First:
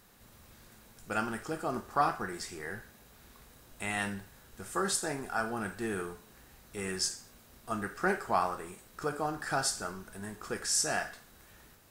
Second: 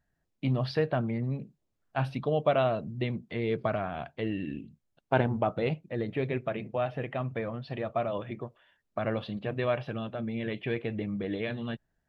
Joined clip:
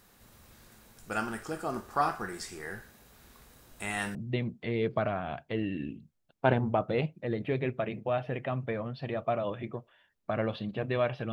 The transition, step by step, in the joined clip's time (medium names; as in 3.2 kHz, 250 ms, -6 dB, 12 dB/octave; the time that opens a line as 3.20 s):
first
4.15 s: go over to second from 2.83 s